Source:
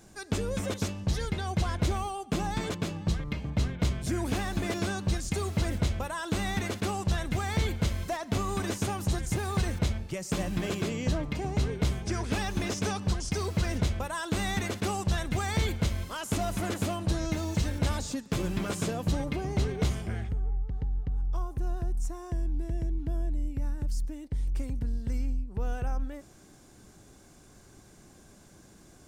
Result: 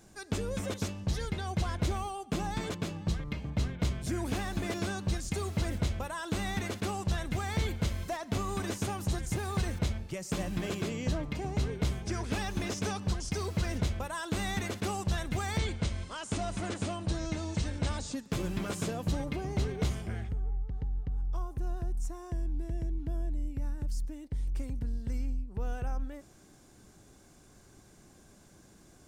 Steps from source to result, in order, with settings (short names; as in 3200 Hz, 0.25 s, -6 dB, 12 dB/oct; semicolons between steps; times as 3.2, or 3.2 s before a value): 15.58–18.14 elliptic low-pass 9100 Hz, stop band 50 dB; gain -3 dB